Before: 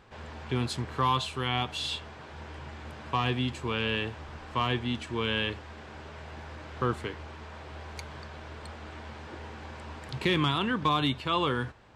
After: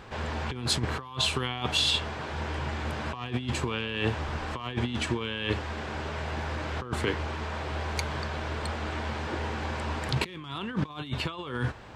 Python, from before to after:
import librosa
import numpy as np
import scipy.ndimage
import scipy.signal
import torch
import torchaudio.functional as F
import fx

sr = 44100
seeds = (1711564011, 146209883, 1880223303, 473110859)

y = fx.over_compress(x, sr, threshold_db=-34.0, ratio=-0.5)
y = F.gain(torch.from_numpy(y), 5.5).numpy()